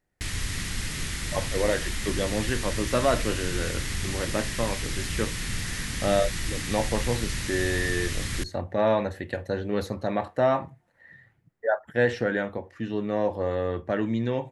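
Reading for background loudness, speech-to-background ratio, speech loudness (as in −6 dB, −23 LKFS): −31.5 LKFS, 3.0 dB, −28.5 LKFS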